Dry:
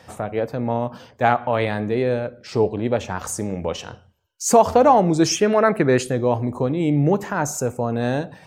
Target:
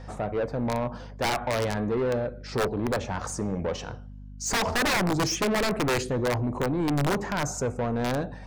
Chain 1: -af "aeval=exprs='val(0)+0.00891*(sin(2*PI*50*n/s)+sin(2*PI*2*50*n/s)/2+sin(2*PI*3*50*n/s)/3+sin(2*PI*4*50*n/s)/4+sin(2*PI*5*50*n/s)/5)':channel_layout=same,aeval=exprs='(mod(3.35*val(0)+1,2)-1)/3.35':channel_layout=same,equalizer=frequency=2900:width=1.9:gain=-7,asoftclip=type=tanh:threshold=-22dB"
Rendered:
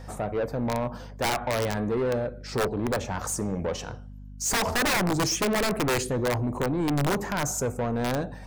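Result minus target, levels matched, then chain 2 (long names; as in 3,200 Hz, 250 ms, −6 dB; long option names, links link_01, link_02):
8,000 Hz band +3.0 dB
-af "aeval=exprs='val(0)+0.00891*(sin(2*PI*50*n/s)+sin(2*PI*2*50*n/s)/2+sin(2*PI*3*50*n/s)/3+sin(2*PI*4*50*n/s)/4+sin(2*PI*5*50*n/s)/5)':channel_layout=same,aeval=exprs='(mod(3.35*val(0)+1,2)-1)/3.35':channel_layout=same,lowpass=5700,equalizer=frequency=2900:width=1.9:gain=-7,asoftclip=type=tanh:threshold=-22dB"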